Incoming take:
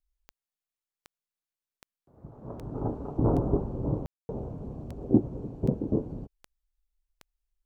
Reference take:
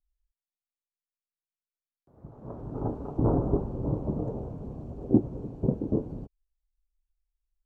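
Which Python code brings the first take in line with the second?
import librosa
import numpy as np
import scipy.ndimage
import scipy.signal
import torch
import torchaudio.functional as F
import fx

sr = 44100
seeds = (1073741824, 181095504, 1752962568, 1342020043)

y = fx.fix_declick_ar(x, sr, threshold=10.0)
y = fx.fix_ambience(y, sr, seeds[0], print_start_s=7.14, print_end_s=7.64, start_s=4.06, end_s=4.29)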